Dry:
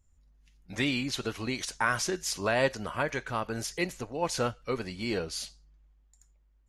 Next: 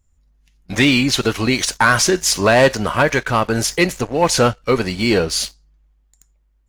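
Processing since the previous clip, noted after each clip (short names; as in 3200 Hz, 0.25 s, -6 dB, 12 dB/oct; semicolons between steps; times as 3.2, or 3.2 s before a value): sample leveller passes 2; gain +8.5 dB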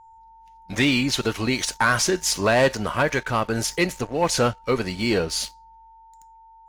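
whine 900 Hz -41 dBFS; gain -6 dB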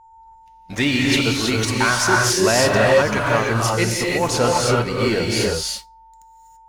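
non-linear reverb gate 0.36 s rising, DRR -2.5 dB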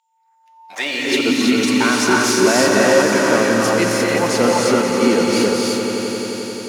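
swelling echo 88 ms, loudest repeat 5, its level -11.5 dB; high-pass sweep 3200 Hz -> 240 Hz, 0.01–1.38; gain -1 dB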